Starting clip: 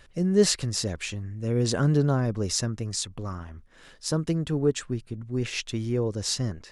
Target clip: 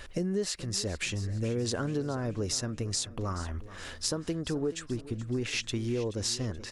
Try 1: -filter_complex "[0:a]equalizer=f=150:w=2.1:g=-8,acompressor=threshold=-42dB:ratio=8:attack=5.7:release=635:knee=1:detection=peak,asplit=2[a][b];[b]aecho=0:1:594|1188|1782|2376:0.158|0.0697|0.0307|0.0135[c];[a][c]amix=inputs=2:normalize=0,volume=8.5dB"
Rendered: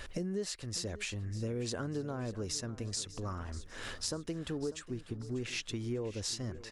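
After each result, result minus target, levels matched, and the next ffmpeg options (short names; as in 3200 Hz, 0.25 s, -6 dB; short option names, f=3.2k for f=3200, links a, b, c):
echo 0.166 s late; compressor: peak gain reduction +5.5 dB
-filter_complex "[0:a]equalizer=f=150:w=2.1:g=-8,acompressor=threshold=-42dB:ratio=8:attack=5.7:release=635:knee=1:detection=peak,asplit=2[a][b];[b]aecho=0:1:428|856|1284|1712:0.158|0.0697|0.0307|0.0135[c];[a][c]amix=inputs=2:normalize=0,volume=8.5dB"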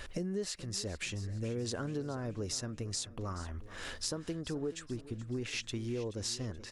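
compressor: peak gain reduction +5.5 dB
-filter_complex "[0:a]equalizer=f=150:w=2.1:g=-8,acompressor=threshold=-35.5dB:ratio=8:attack=5.7:release=635:knee=1:detection=peak,asplit=2[a][b];[b]aecho=0:1:428|856|1284|1712:0.158|0.0697|0.0307|0.0135[c];[a][c]amix=inputs=2:normalize=0,volume=8.5dB"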